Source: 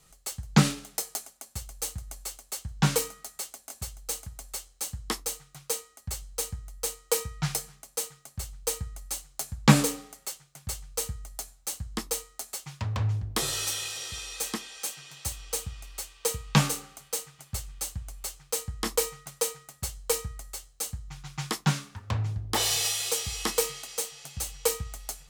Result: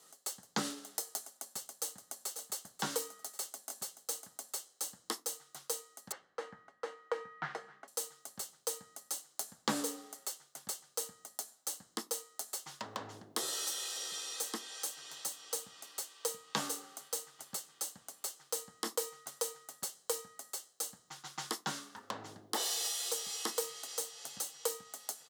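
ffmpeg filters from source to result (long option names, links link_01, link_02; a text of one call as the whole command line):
ffmpeg -i in.wav -filter_complex "[0:a]asplit=2[link_01][link_02];[link_02]afade=type=in:start_time=1.79:duration=0.01,afade=type=out:start_time=2.41:duration=0.01,aecho=0:1:540|1080|1620|2160:0.298538|0.104488|0.0365709|0.0127998[link_03];[link_01][link_03]amix=inputs=2:normalize=0,asettb=1/sr,asplit=3[link_04][link_05][link_06];[link_04]atrim=end=6.124[link_07];[link_05]atrim=start=6.12:end=7.88,asetpts=PTS-STARTPTS,afade=type=in:duration=0.004:curve=qsin,afade=type=out:start_time=1.756:duration=0.004:curve=qsin,lowpass=frequency=1800:width_type=q:width=2.1[link_08];[link_06]atrim=start=7.876[link_09];[link_07][link_08]acrossfade=duration=0.004:curve1=hsin:curve2=qsin[link_10];[link_10][link_09]acrossfade=duration=0.004:curve1=qsin:curve2=hsin,highpass=frequency=250:width=0.5412,highpass=frequency=250:width=1.3066,equalizer=frequency=2400:width_type=o:width=0.32:gain=-11,acompressor=threshold=-41dB:ratio=2,volume=1dB" out.wav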